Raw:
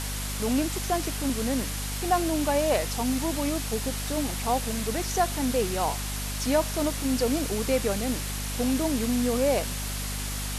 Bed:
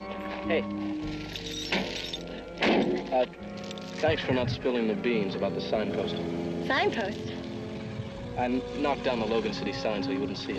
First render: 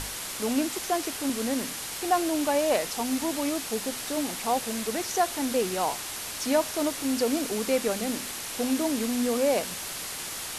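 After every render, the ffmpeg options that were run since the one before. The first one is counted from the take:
-af "bandreject=f=50:t=h:w=6,bandreject=f=100:t=h:w=6,bandreject=f=150:t=h:w=6,bandreject=f=200:t=h:w=6,bandreject=f=250:t=h:w=6"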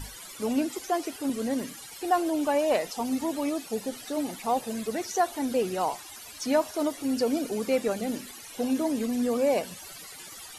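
-af "afftdn=nr=16:nf=-36"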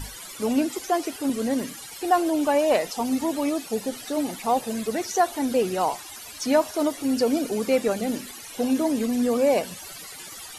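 -af "volume=1.58"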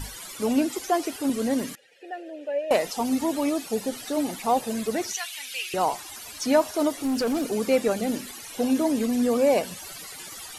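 -filter_complex "[0:a]asettb=1/sr,asplit=3[s0][s1][s2];[s0]atrim=end=1.754[s3];[s1]atrim=start=1.75:end=2.71,asetpts=PTS-STARTPTS,afade=t=in:d=0.004:c=qsin,afade=t=out:st=0.956:d=0.004:c=qsin,asplit=3[s4][s5][s6];[s4]bandpass=f=530:t=q:w=8,volume=1[s7];[s5]bandpass=f=1840:t=q:w=8,volume=0.501[s8];[s6]bandpass=f=2480:t=q:w=8,volume=0.355[s9];[s7][s8][s9]amix=inputs=3:normalize=0[s10];[s2]atrim=start=2.706[s11];[s3][s10]acrossfade=d=0.004:c1=hsin:c2=qsin[s12];[s12][s11]acrossfade=d=0.004:c1=qsin:c2=hsin,asettb=1/sr,asplit=3[s13][s14][s15];[s13]atrim=end=5.134[s16];[s14]atrim=start=5.13:end=5.74,asetpts=PTS-STARTPTS,afade=t=in:d=0.004:c=qsin,afade=t=out:st=0.606:d=0.004:c=qsin,highpass=f=2600:t=q:w=3[s17];[s15]atrim=start=5.736[s18];[s16][s17]acrossfade=d=0.004:c1=hsin:c2=qsin[s19];[s19][s18]acrossfade=d=0.004:c1=qsin:c2=hsin,asplit=3[s20][s21][s22];[s20]afade=t=out:st=6.97:d=0.02[s23];[s21]volume=12.6,asoftclip=hard,volume=0.0794,afade=t=in:st=6.97:d=0.02,afade=t=out:st=7.51:d=0.02[s24];[s22]afade=t=in:st=7.51:d=0.02[s25];[s23][s24][s25]amix=inputs=3:normalize=0"

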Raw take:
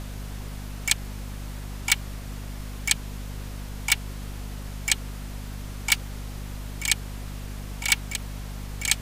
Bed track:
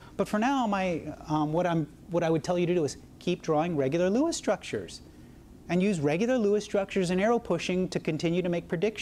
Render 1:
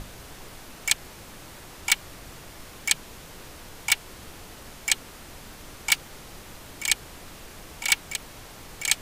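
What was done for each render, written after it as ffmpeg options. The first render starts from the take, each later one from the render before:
-af "bandreject=f=50:t=h:w=6,bandreject=f=100:t=h:w=6,bandreject=f=150:t=h:w=6,bandreject=f=200:t=h:w=6,bandreject=f=250:t=h:w=6"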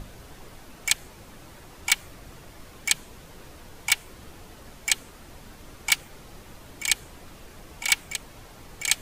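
-af "afftdn=nr=6:nf=-45"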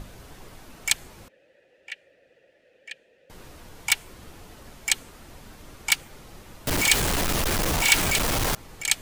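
-filter_complex "[0:a]asettb=1/sr,asplit=3[s0][s1][s2];[s0]atrim=end=1.284[s3];[s1]atrim=start=1.28:end=3.3,asetpts=PTS-STARTPTS,afade=t=in:d=0.004:c=qsin,afade=t=out:st=2.016:d=0.004:c=qsin,asplit=3[s4][s5][s6];[s4]bandpass=f=530:t=q:w=8,volume=1[s7];[s5]bandpass=f=1840:t=q:w=8,volume=0.501[s8];[s6]bandpass=f=2480:t=q:w=8,volume=0.355[s9];[s7][s8][s9]amix=inputs=3:normalize=0[s10];[s2]atrim=start=3.296[s11];[s3][s10]acrossfade=d=0.004:c1=hsin:c2=qsin[s12];[s12][s11]acrossfade=d=0.004:c1=qsin:c2=hsin,asettb=1/sr,asplit=3[s13][s14][s15];[s13]atrim=end=6.674[s16];[s14]atrim=start=6.67:end=8.55,asetpts=PTS-STARTPTS,afade=t=in:d=0.004:c=qsin,afade=t=out:st=1.876:d=0.004:c=qsin,aeval=exprs='val(0)+0.5*0.119*sgn(val(0))':c=same[s17];[s15]atrim=start=8.546[s18];[s16][s17]acrossfade=d=0.004:c1=hsin:c2=qsin[s19];[s19][s18]acrossfade=d=0.004:c1=qsin:c2=hsin"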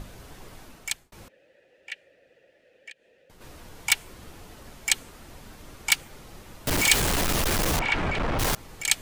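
-filter_complex "[0:a]asplit=3[s0][s1][s2];[s0]afade=t=out:st=2.9:d=0.02[s3];[s1]acompressor=threshold=0.00158:ratio=2:attack=3.2:release=140:knee=1:detection=peak,afade=t=in:st=2.9:d=0.02,afade=t=out:st=3.4:d=0.02[s4];[s2]afade=t=in:st=3.4:d=0.02[s5];[s3][s4][s5]amix=inputs=3:normalize=0,asettb=1/sr,asplit=3[s6][s7][s8];[s6]atrim=end=7.794[s9];[s7]atrim=start=7.79:end=8.39,asetpts=PTS-STARTPTS,afade=t=in:d=0.004:c=qsin,afade=t=out:st=0.596:d=0.004:c=qsin,lowpass=1900[s10];[s8]atrim=start=8.386[s11];[s9][s10]acrossfade=d=0.004:c1=hsin:c2=qsin[s12];[s12][s11]acrossfade=d=0.004:c1=qsin:c2=hsin,asplit=2[s13][s14];[s13]atrim=end=1.12,asetpts=PTS-STARTPTS,afade=t=out:st=0.62:d=0.5[s15];[s14]atrim=start=1.12,asetpts=PTS-STARTPTS,afade=t=in:d=0.004:c=hsin[s16];[s15][s16]concat=n=2:v=0:a=1"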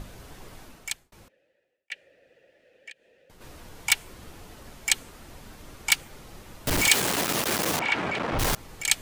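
-filter_complex "[0:a]asettb=1/sr,asplit=3[s0][s1][s2];[s0]atrim=end=6.894[s3];[s1]atrim=start=6.89:end=8.33,asetpts=PTS-STARTPTS,afade=t=in:d=0.004:c=qsin,afade=t=out:st=1.436:d=0.004:c=qsin,highpass=180[s4];[s2]atrim=start=8.326[s5];[s3][s4]acrossfade=d=0.004:c1=hsin:c2=qsin[s6];[s6][s5]acrossfade=d=0.004:c1=qsin:c2=hsin,asplit=2[s7][s8];[s7]atrim=end=1.9,asetpts=PTS-STARTPTS,afade=t=out:st=0.63:d=1.27[s9];[s8]atrim=start=1.9,asetpts=PTS-STARTPTS,afade=t=in:d=0.004:c=hsin[s10];[s9][s10]concat=n=2:v=0:a=1"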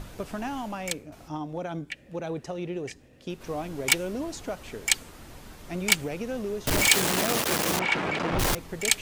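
-filter_complex "[1:a]volume=0.447[s0];[0:a][s0]amix=inputs=2:normalize=0"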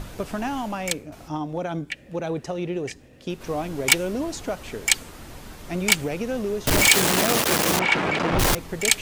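-af "volume=1.78,alimiter=limit=0.891:level=0:latency=1"

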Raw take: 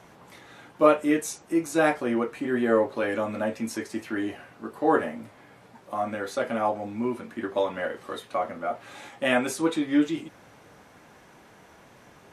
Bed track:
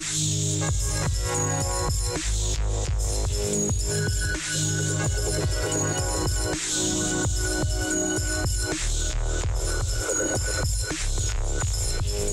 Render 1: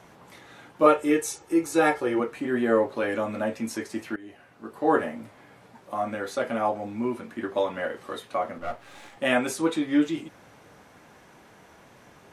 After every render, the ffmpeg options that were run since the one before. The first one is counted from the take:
-filter_complex "[0:a]asettb=1/sr,asplit=3[s0][s1][s2];[s0]atrim=end=0.864[s3];[s1]atrim=start=0.86:end=2.2,asetpts=PTS-STARTPTS,afade=t=in:d=0.004:c=qsin,afade=t=out:st=1.336:d=0.004:c=qsin,aecho=1:1:2.3:0.65,atrim=end_sample=59094[s4];[s2]atrim=start=2.196[s5];[s3][s4]acrossfade=d=0.004:c1=hsin:c2=qsin[s6];[s6][s5]acrossfade=d=0.004:c1=qsin:c2=hsin,asettb=1/sr,asplit=3[s7][s8][s9];[s7]atrim=end=8.584[s10];[s8]atrim=start=8.58:end=9.17,asetpts=PTS-STARTPTS,afade=t=in:d=0.004:c=qsin,afade=t=out:st=0.586:d=0.004:c=qsin,aeval=exprs='if(lt(val(0),0),0.251*val(0),val(0))':c=same[s11];[s9]atrim=start=9.166[s12];[s10][s11]acrossfade=d=0.004:c1=hsin:c2=qsin[s13];[s13][s12]acrossfade=d=0.004:c1=qsin:c2=hsin,asplit=2[s14][s15];[s14]atrim=end=4.16,asetpts=PTS-STARTPTS,afade=t=out:st=4.156:d=0.004:c=hsin:silence=0.0891251[s16];[s15]atrim=start=4.16,asetpts=PTS-STARTPTS,afade=t=in:d=0.74:silence=0.0891251[s17];[s16][s17]concat=n=2:v=0:a=1"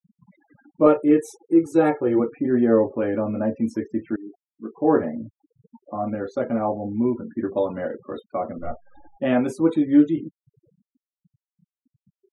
-af "afftfilt=real='re*gte(hypot(re,im),0.0158)':imag='im*gte(hypot(re,im),0.0158)':win_size=1024:overlap=0.75,tiltshelf=f=760:g=9.5"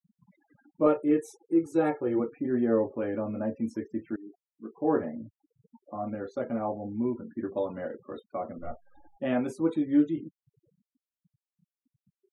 -af "volume=0.422"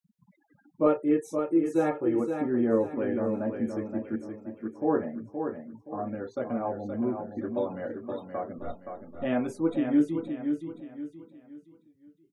-af "aecho=1:1:522|1044|1566|2088:0.473|0.17|0.0613|0.0221"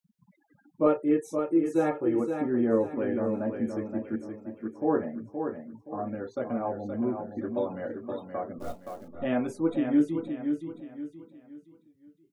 -filter_complex "[0:a]asettb=1/sr,asplit=3[s0][s1][s2];[s0]atrim=end=8.604[s3];[s1]atrim=start=8.6:end=9.08,asetpts=PTS-STARTPTS,afade=t=in:d=0.004:c=qsin,afade=t=out:st=0.476:d=0.004:c=qsin,acrusher=bits=5:mode=log:mix=0:aa=0.000001[s4];[s2]atrim=start=9.076[s5];[s3][s4]acrossfade=d=0.004:c1=hsin:c2=qsin[s6];[s6][s5]acrossfade=d=0.004:c1=qsin:c2=hsin"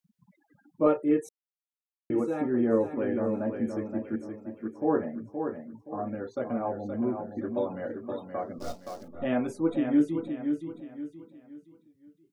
-filter_complex "[0:a]asettb=1/sr,asplit=3[s0][s1][s2];[s0]atrim=end=8.384[s3];[s1]atrim=start=8.38:end=9.03,asetpts=PTS-STARTPTS,afade=t=in:d=0.004:c=qsin,afade=t=out:st=0.646:d=0.004:c=qsin,equalizer=f=5100:w=1.3:g=13.5[s4];[s2]atrim=start=9.026[s5];[s3][s4]acrossfade=d=0.004:c1=hsin:c2=qsin[s6];[s6][s5]acrossfade=d=0.004:c1=qsin:c2=hsin,asplit=3[s7][s8][s9];[s7]atrim=end=1.29,asetpts=PTS-STARTPTS,afade=t=out:st=1.286:d=0.004:c=hsin[s10];[s8]atrim=start=1.29:end=2.1,asetpts=PTS-STARTPTS,volume=0[s11];[s9]atrim=start=2.1,asetpts=PTS-STARTPTS,afade=t=in:d=0.004:c=hsin[s12];[s10][s11][s12]concat=n=3:v=0:a=1"

